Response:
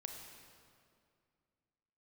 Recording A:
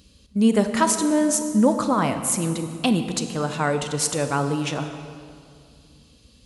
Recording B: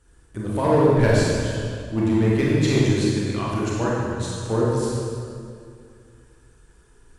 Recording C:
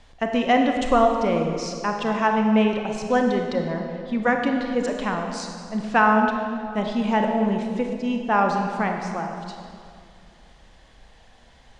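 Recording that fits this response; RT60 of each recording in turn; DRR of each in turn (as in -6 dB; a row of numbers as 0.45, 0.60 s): C; 2.3, 2.3, 2.3 s; 7.5, -6.0, 2.5 dB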